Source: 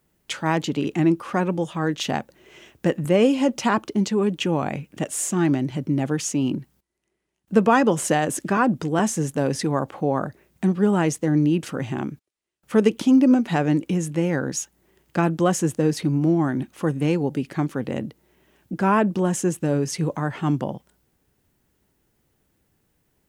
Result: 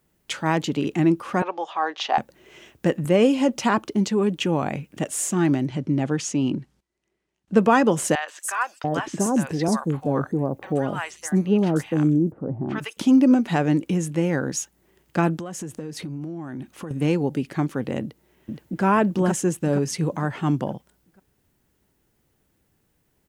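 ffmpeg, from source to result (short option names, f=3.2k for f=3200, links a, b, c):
-filter_complex "[0:a]asettb=1/sr,asplit=3[a][b][c];[a]atrim=end=1.424[d];[b]atrim=start=1.42:end=2.18,asetpts=PTS-STARTPTS,afade=t=in:d=0.004:c=qsin,afade=t=out:st=0.756:d=0.004:c=qsin,highpass=f=440:w=0.5412,highpass=f=440:w=1.3066,equalizer=f=500:t=q:w=4:g=-5,equalizer=f=780:t=q:w=4:g=9,equalizer=f=1.1k:t=q:w=4:g=6,lowpass=f=5.3k:w=0.5412,lowpass=f=5.3k:w=1.3066[e];[c]atrim=start=2.176[f];[d][e]acrossfade=d=0.004:c1=hsin:c2=qsin[g];[g][f]acrossfade=d=0.004:c1=qsin:c2=hsin,asettb=1/sr,asplit=3[h][i][j];[h]atrim=end=5.674[k];[i]atrim=start=5.67:end=7.57,asetpts=PTS-STARTPTS,afade=t=in:d=0.004:c=qsin,afade=t=out:st=1.896:d=0.004:c=qsin,lowpass=7.3k[l];[j]atrim=start=7.566[m];[k][l]acrossfade=d=0.004:c1=hsin:c2=qsin[n];[n][m]acrossfade=d=0.004:c1=qsin:c2=hsin,asettb=1/sr,asplit=3[o][p][q];[o]atrim=end=8.154[r];[p]atrim=start=8.15:end=12.97,asetpts=PTS-STARTPTS,afade=t=in:d=0.004:c=qsin,afade=t=out:st=4.816:d=0.004:c=qsin,acrossover=split=820|4700[s][t][u];[u]adelay=130[v];[s]adelay=690[w];[w][t][v]amix=inputs=3:normalize=0,atrim=end_sample=212562[x];[q]atrim=start=12.966[y];[r][x]acrossfade=d=0.004:c1=hsin:c2=qsin[z];[z][y]acrossfade=d=0.004:c1=qsin:c2=hsin,asettb=1/sr,asplit=3[aa][ab][ac];[aa]atrim=end=15.364[ad];[ab]atrim=start=15.36:end=16.91,asetpts=PTS-STARTPTS,afade=t=in:d=0.004:c=qsin,afade=t=out:st=1.546:d=0.004:c=qsin,acompressor=threshold=-29dB:ratio=8:attack=3.2:release=140:knee=1:detection=peak[ae];[ac]atrim=start=16.906[af];[ad][ae]acrossfade=d=0.004:c1=hsin:c2=qsin[ag];[ag][af]acrossfade=d=0.004:c1=qsin:c2=hsin,asplit=2[ah][ai];[ai]afade=t=in:st=18.01:d=0.01,afade=t=out:st=18.84:d=0.01,aecho=0:1:470|940|1410|1880|2350:0.891251|0.3565|0.1426|0.0570401|0.022816[aj];[ah][aj]amix=inputs=2:normalize=0"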